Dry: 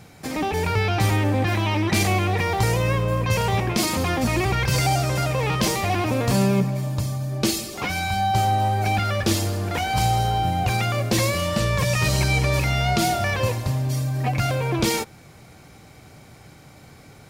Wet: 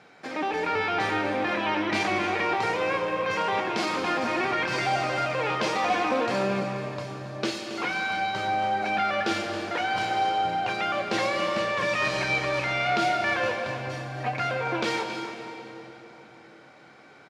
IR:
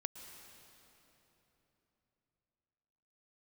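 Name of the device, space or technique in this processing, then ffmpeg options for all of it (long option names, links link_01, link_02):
station announcement: -filter_complex "[0:a]highpass=330,lowpass=3700,equalizer=frequency=1500:width_type=o:width=0.41:gain=5,aecho=1:1:29.15|274.1:0.282|0.251[link_01];[1:a]atrim=start_sample=2205[link_02];[link_01][link_02]afir=irnorm=-1:irlink=0,asettb=1/sr,asplit=3[link_03][link_04][link_05];[link_03]atrim=end=5.754[link_06];[link_04]atrim=start=5.75:end=6.26,asetpts=PTS-STARTPTS,afade=type=in:duration=0.004:curve=qsin,afade=type=out:start_time=0.506:duration=0.004:curve=qsin,aecho=1:1:4:0.58,atrim=end_sample=22491[link_07];[link_05]atrim=start=6.256[link_08];[link_06][link_07]acrossfade=duration=0.004:curve1=hsin:curve2=qsin[link_09];[link_09][link_08]acrossfade=duration=0.004:curve1=qsin:curve2=hsin"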